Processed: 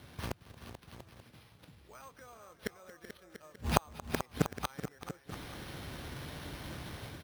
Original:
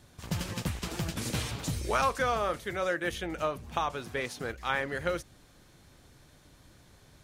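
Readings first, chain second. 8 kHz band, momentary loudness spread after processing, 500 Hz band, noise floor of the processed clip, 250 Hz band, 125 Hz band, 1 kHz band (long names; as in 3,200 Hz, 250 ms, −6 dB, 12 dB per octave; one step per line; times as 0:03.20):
−7.0 dB, 20 LU, −10.0 dB, −63 dBFS, −4.0 dB, −4.5 dB, −9.0 dB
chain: gate with flip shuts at −27 dBFS, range −39 dB
automatic gain control gain up to 10 dB
multi-tap delay 228/380/436/690/885 ms −19/−15/−11/−13/−18.5 dB
bad sample-rate conversion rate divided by 6×, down none, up hold
high-pass filter 50 Hz
level +3.5 dB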